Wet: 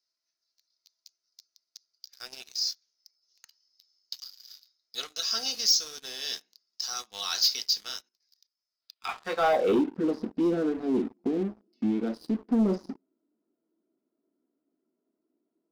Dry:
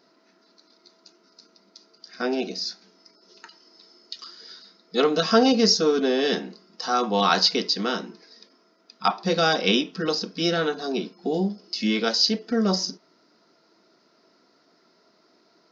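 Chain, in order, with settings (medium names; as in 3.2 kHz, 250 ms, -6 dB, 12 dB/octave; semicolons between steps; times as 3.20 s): band-pass sweep 6.3 kHz -> 280 Hz, 8.71–9.86 s; 10.99–12.45 s: compression 2.5:1, threshold -31 dBFS, peak gain reduction 6 dB; on a send at -10 dB: reverberation RT60 0.35 s, pre-delay 3 ms; on the sum: waveshaping leveller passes 3; 8.02–9.09 s: level held to a coarse grid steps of 14 dB; trim -6 dB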